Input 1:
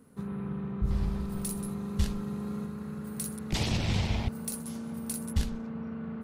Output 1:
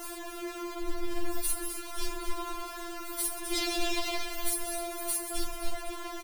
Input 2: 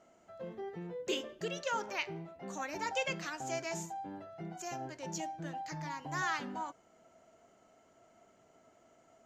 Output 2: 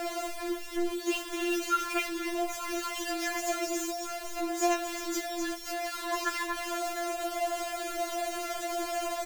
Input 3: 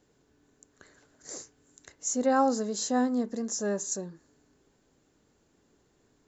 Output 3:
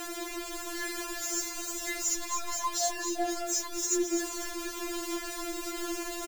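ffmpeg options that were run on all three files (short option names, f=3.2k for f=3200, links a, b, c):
-filter_complex "[0:a]aeval=exprs='val(0)+0.5*0.0316*sgn(val(0))':c=same,asplit=7[a][b][c][d][e][f][g];[b]adelay=256,afreqshift=-47,volume=-8dB[h];[c]adelay=512,afreqshift=-94,volume=-14dB[i];[d]adelay=768,afreqshift=-141,volume=-20dB[j];[e]adelay=1024,afreqshift=-188,volume=-26.1dB[k];[f]adelay=1280,afreqshift=-235,volume=-32.1dB[l];[g]adelay=1536,afreqshift=-282,volume=-38.1dB[m];[a][h][i][j][k][l][m]amix=inputs=7:normalize=0,afftfilt=real='re*4*eq(mod(b,16),0)':imag='im*4*eq(mod(b,16),0)':win_size=2048:overlap=0.75,volume=2dB"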